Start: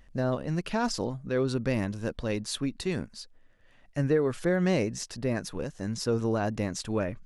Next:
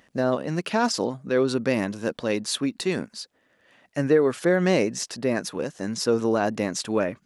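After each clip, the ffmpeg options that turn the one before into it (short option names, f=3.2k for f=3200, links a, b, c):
-af "highpass=210,volume=6.5dB"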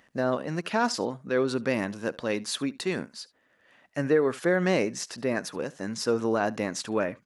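-filter_complex "[0:a]acrossover=split=1900[a][b];[a]crystalizer=i=7:c=0[c];[c][b]amix=inputs=2:normalize=0,aecho=1:1:71:0.0794,volume=-4.5dB"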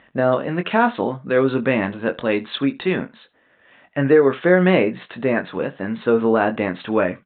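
-filter_complex "[0:a]asplit=2[a][b];[b]adelay=22,volume=-8dB[c];[a][c]amix=inputs=2:normalize=0,aresample=8000,aresample=44100,volume=8dB"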